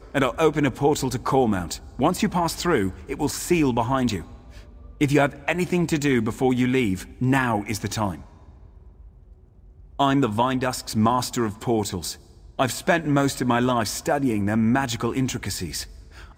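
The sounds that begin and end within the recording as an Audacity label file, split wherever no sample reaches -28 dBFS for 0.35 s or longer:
5.010000	8.150000	sound
10.000000	12.120000	sound
12.590000	15.840000	sound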